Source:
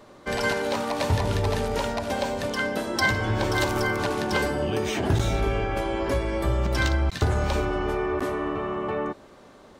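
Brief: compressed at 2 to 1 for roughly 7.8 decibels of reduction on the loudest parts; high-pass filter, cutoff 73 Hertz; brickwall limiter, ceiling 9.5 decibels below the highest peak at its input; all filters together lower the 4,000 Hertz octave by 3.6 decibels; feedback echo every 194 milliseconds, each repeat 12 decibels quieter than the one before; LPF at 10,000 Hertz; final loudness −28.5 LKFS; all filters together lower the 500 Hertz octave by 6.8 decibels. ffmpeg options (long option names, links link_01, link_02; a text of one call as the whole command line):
ffmpeg -i in.wav -af "highpass=73,lowpass=10000,equalizer=frequency=500:width_type=o:gain=-9,equalizer=frequency=4000:width_type=o:gain=-4.5,acompressor=threshold=-34dB:ratio=2,alimiter=level_in=4.5dB:limit=-24dB:level=0:latency=1,volume=-4.5dB,aecho=1:1:194|388|582:0.251|0.0628|0.0157,volume=8.5dB" out.wav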